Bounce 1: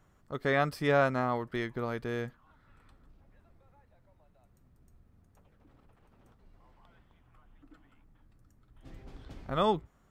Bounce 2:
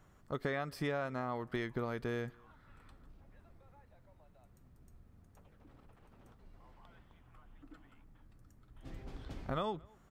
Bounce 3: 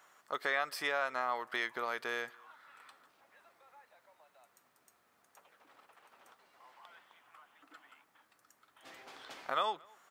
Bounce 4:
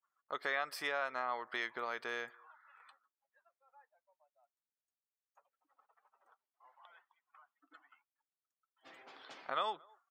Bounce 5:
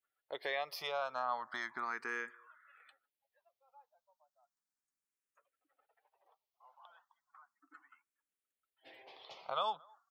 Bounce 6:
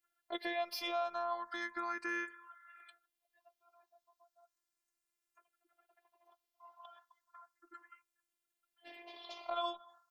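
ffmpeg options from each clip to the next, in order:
ffmpeg -i in.wav -filter_complex "[0:a]acompressor=threshold=-34dB:ratio=12,asplit=2[link_01][link_02];[link_02]adelay=227.4,volume=-27dB,highshelf=frequency=4000:gain=-5.12[link_03];[link_01][link_03]amix=inputs=2:normalize=0,volume=1.5dB" out.wav
ffmpeg -i in.wav -af "highpass=870,volume=8.5dB" out.wav
ffmpeg -i in.wav -af "agate=range=-33dB:threshold=-58dB:ratio=3:detection=peak,afftdn=noise_reduction=21:noise_floor=-61,volume=-3dB" out.wav
ffmpeg -i in.wav -filter_complex "[0:a]asplit=2[link_01][link_02];[link_02]afreqshift=0.35[link_03];[link_01][link_03]amix=inputs=2:normalize=1,volume=2.5dB" out.wav
ffmpeg -i in.wav -filter_complex "[0:a]acrossover=split=570[link_01][link_02];[link_02]alimiter=level_in=8.5dB:limit=-24dB:level=0:latency=1:release=260,volume=-8.5dB[link_03];[link_01][link_03]amix=inputs=2:normalize=0,afftfilt=real='hypot(re,im)*cos(PI*b)':imag='0':win_size=512:overlap=0.75,volume=7.5dB" out.wav

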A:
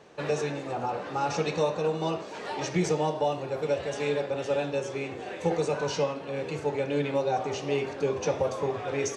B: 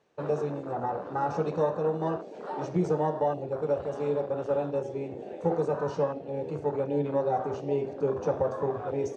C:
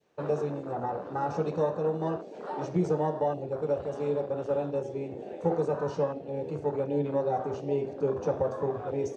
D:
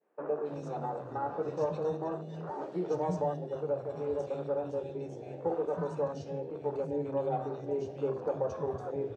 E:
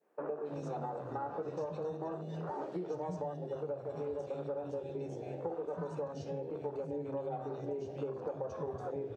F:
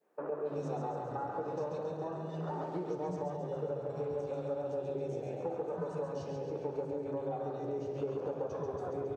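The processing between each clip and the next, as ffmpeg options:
ffmpeg -i in.wav -af "afwtdn=0.0224" out.wav
ffmpeg -i in.wav -af "adynamicequalizer=threshold=0.00794:dfrequency=1200:dqfactor=0.75:tfrequency=1200:tqfactor=0.75:attack=5:release=100:ratio=0.375:range=1.5:mode=cutabove:tftype=bell" out.wav
ffmpeg -i in.wav -filter_complex "[0:a]acrossover=split=210|2100[link_01][link_02][link_03];[link_03]adelay=270[link_04];[link_01]adelay=330[link_05];[link_05][link_02][link_04]amix=inputs=3:normalize=0,volume=-3.5dB" out.wav
ffmpeg -i in.wav -af "acompressor=threshold=-37dB:ratio=6,volume=1.5dB" out.wav
ffmpeg -i in.wav -af "aecho=1:1:137|274|411|548|685|822|959|1096:0.596|0.351|0.207|0.122|0.0722|0.0426|0.0251|0.0148" out.wav

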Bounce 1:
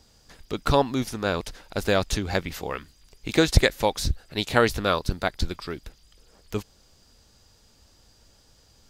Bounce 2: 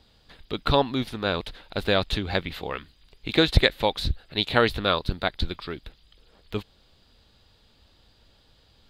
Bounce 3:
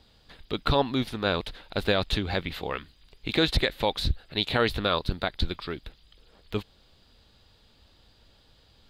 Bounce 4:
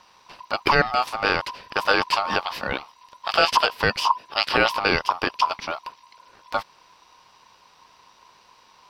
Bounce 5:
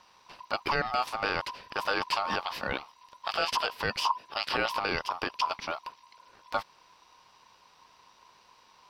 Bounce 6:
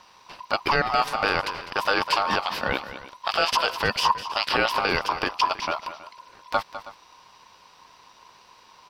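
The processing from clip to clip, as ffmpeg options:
ffmpeg -i in.wav -af "highshelf=frequency=4800:width_type=q:width=3:gain=-8,volume=-1dB" out.wav
ffmpeg -i in.wav -af "alimiter=limit=-11.5dB:level=0:latency=1:release=42" out.wav
ffmpeg -i in.wav -af "aeval=exprs='val(0)*sin(2*PI*1000*n/s)':channel_layout=same,volume=7.5dB" out.wav
ffmpeg -i in.wav -af "alimiter=limit=-11.5dB:level=0:latency=1:release=44,volume=-5dB" out.wav
ffmpeg -i in.wav -af "aecho=1:1:203|321:0.224|0.119,volume=6.5dB" out.wav

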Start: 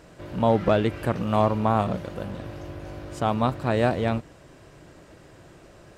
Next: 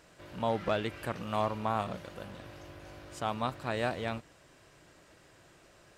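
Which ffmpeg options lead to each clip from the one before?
ffmpeg -i in.wav -af "tiltshelf=frequency=830:gain=-5,volume=-8.5dB" out.wav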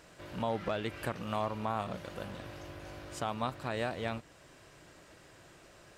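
ffmpeg -i in.wav -af "alimiter=level_in=0.5dB:limit=-24dB:level=0:latency=1:release=344,volume=-0.5dB,volume=2.5dB" out.wav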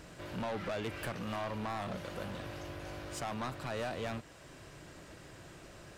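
ffmpeg -i in.wav -filter_complex "[0:a]acrossover=split=310[link_01][link_02];[link_01]acompressor=mode=upward:threshold=-51dB:ratio=2.5[link_03];[link_03][link_02]amix=inputs=2:normalize=0,asoftclip=type=tanh:threshold=-35.5dB,volume=3dB" out.wav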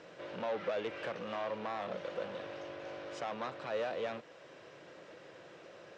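ffmpeg -i in.wav -af "highpass=240,equalizer=frequency=260:width_type=q:width=4:gain=-5,equalizer=frequency=510:width_type=q:width=4:gain=9,equalizer=frequency=4600:width_type=q:width=4:gain=-5,lowpass=frequency=5400:width=0.5412,lowpass=frequency=5400:width=1.3066,volume=-1dB" out.wav

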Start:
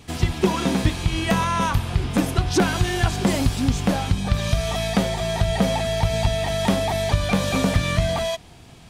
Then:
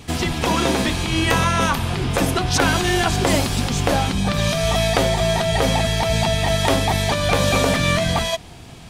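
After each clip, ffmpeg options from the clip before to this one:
ffmpeg -i in.wav -af "afftfilt=real='re*lt(hypot(re,im),0.631)':imag='im*lt(hypot(re,im),0.631)':win_size=1024:overlap=0.75,volume=6dB" out.wav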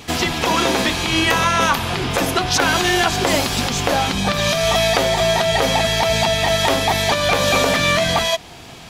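ffmpeg -i in.wav -filter_complex "[0:a]lowshelf=frequency=240:gain=-11,asplit=2[link_01][link_02];[link_02]alimiter=limit=-13.5dB:level=0:latency=1:release=298,volume=3dB[link_03];[link_01][link_03]amix=inputs=2:normalize=0,equalizer=frequency=8900:width_type=o:width=0.3:gain=-7,volume=-1.5dB" out.wav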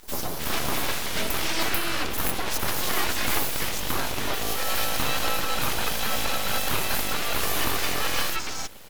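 ffmpeg -i in.wav -filter_complex "[0:a]aexciter=amount=6.5:drive=3.1:freq=11000,acrossover=split=1100|4400[link_01][link_02][link_03];[link_01]adelay=30[link_04];[link_02]adelay=310[link_05];[link_04][link_05][link_03]amix=inputs=3:normalize=0,aeval=exprs='abs(val(0))':channel_layout=same,volume=-5dB" out.wav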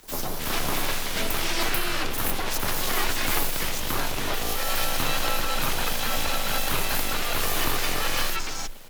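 ffmpeg -i in.wav -af "afreqshift=14" out.wav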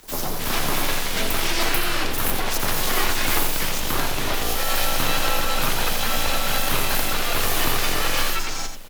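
ffmpeg -i in.wav -af "aecho=1:1:87:0.398,volume=3dB" out.wav

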